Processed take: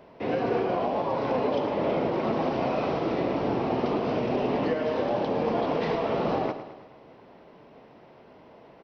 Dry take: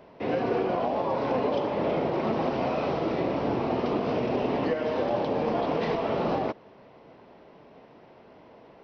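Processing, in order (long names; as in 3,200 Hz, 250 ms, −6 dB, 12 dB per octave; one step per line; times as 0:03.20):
repeating echo 108 ms, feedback 55%, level −11.5 dB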